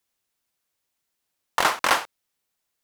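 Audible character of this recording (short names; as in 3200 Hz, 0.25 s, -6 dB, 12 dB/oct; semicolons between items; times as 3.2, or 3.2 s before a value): noise floor -80 dBFS; spectral tilt -2.0 dB/oct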